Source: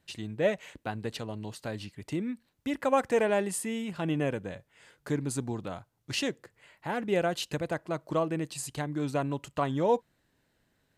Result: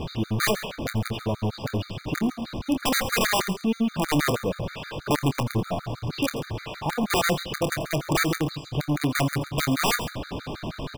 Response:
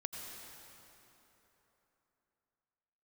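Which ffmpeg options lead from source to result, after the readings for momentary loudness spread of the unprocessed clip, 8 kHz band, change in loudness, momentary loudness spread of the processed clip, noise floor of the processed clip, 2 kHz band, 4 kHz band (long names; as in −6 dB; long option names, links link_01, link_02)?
12 LU, +8.0 dB, +5.0 dB, 10 LU, −46 dBFS, +9.5 dB, +10.5 dB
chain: -filter_complex "[0:a]aeval=exprs='val(0)+0.5*0.0398*sgn(val(0))':channel_layout=same,lowpass=frequency=4600:width=0.5412,lowpass=frequency=4600:width=1.3066,acrossover=split=3600[link_01][link_02];[link_02]acompressor=threshold=-49dB:ratio=4:attack=1:release=60[link_03];[link_01][link_03]amix=inputs=2:normalize=0,equalizer=frequency=1900:width=3.3:gain=-14.5,asplit=2[link_04][link_05];[link_05]acrusher=samples=14:mix=1:aa=0.000001,volume=-9.5dB[link_06];[link_04][link_06]amix=inputs=2:normalize=0,aeval=exprs='(mod(8.91*val(0)+1,2)-1)/8.91':channel_layout=same,asplit=2[link_07][link_08];[link_08]adelay=27,volume=-10.5dB[link_09];[link_07][link_09]amix=inputs=2:normalize=0,aecho=1:1:137:0.178[link_10];[1:a]atrim=start_sample=2205,atrim=end_sample=3969[link_11];[link_10][link_11]afir=irnorm=-1:irlink=0,afftfilt=real='re*gt(sin(2*PI*6.3*pts/sr)*(1-2*mod(floor(b*sr/1024/1200),2)),0)':imag='im*gt(sin(2*PI*6.3*pts/sr)*(1-2*mod(floor(b*sr/1024/1200),2)),0)':win_size=1024:overlap=0.75,volume=6.5dB"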